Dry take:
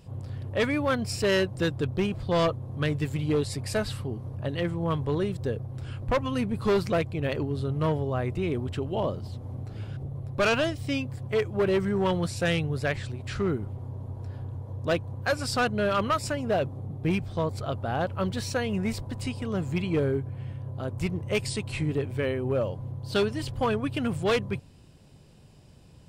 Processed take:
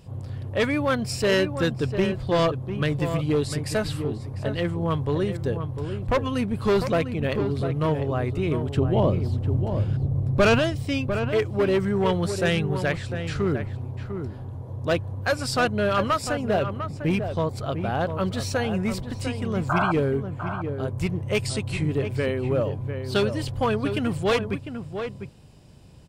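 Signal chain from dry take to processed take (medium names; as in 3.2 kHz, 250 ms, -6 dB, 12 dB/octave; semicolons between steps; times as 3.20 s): 8.77–10.59 s: bass shelf 410 Hz +9 dB; 19.69–19.92 s: painted sound noise 580–1600 Hz -26 dBFS; echo from a far wall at 120 m, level -8 dB; trim +2.5 dB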